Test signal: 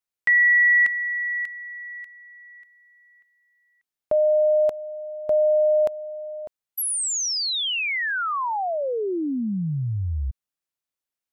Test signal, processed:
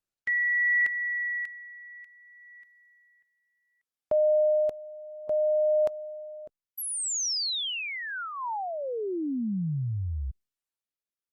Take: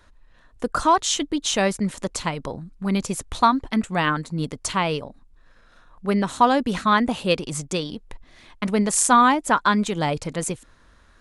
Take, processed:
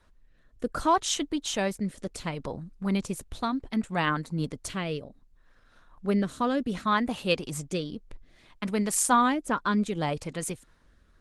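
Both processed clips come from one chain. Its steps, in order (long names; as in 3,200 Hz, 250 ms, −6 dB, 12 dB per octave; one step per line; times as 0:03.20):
rotating-speaker cabinet horn 0.65 Hz
level −3.5 dB
Opus 20 kbit/s 48,000 Hz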